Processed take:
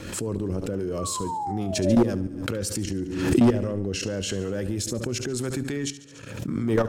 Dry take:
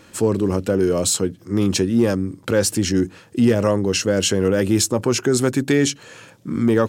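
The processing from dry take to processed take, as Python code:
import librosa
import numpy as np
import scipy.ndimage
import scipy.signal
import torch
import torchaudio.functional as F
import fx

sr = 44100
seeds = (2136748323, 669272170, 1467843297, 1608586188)

y = fx.rotary_switch(x, sr, hz=6.0, then_hz=0.85, switch_at_s=2.22)
y = fx.transient(y, sr, attack_db=-2, sustain_db=-7)
y = fx.spec_paint(y, sr, seeds[0], shape='fall', start_s=0.98, length_s=1.12, low_hz=480.0, high_hz=1200.0, level_db=-30.0)
y = fx.level_steps(y, sr, step_db=16)
y = fx.low_shelf(y, sr, hz=92.0, db=9.0)
y = fx.echo_feedback(y, sr, ms=71, feedback_pct=55, wet_db=-15)
y = np.clip(y, -10.0 ** (-16.0 / 20.0), 10.0 ** (-16.0 / 20.0))
y = fx.high_shelf(y, sr, hz=7800.0, db=-4.5, at=(3.4, 4.38))
y = fx.pre_swell(y, sr, db_per_s=51.0)
y = y * 10.0 ** (2.5 / 20.0)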